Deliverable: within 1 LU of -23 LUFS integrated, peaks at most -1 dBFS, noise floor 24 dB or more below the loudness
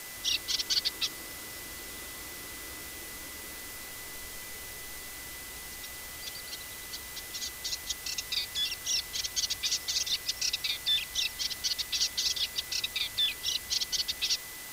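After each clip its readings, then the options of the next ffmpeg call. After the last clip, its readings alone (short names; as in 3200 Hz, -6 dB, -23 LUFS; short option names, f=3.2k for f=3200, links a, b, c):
steady tone 2000 Hz; tone level -48 dBFS; noise floor -43 dBFS; noise floor target -56 dBFS; loudness -31.5 LUFS; peak -15.0 dBFS; loudness target -23.0 LUFS
-> -af "bandreject=f=2k:w=30"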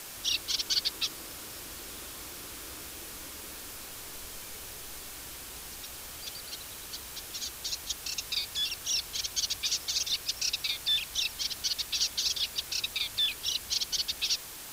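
steady tone none; noise floor -44 dBFS; noise floor target -56 dBFS
-> -af "afftdn=nr=12:nf=-44"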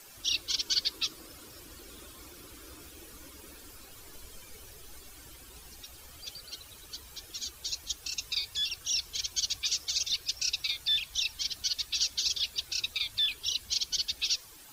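noise floor -52 dBFS; noise floor target -54 dBFS
-> -af "afftdn=nr=6:nf=-52"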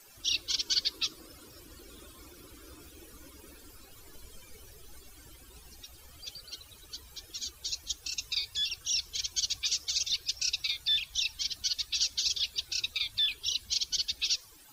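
noise floor -55 dBFS; loudness -30.0 LUFS; peak -15.0 dBFS; loudness target -23.0 LUFS
-> -af "volume=7dB"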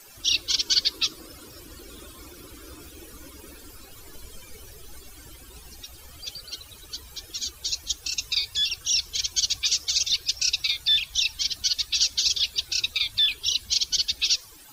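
loudness -23.0 LUFS; peak -8.0 dBFS; noise floor -48 dBFS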